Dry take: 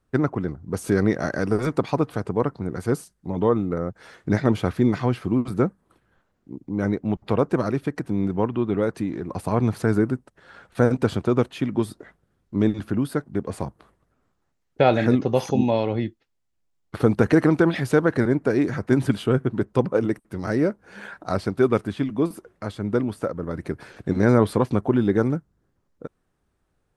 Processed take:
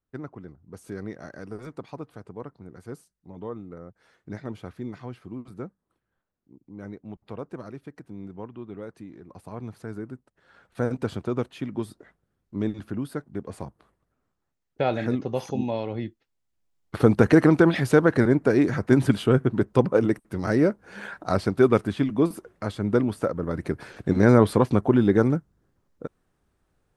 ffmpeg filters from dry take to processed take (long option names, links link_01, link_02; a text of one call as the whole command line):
ffmpeg -i in.wav -af "volume=1dB,afade=type=in:start_time=10.01:duration=0.94:silence=0.375837,afade=type=in:start_time=15.9:duration=1.13:silence=0.398107" out.wav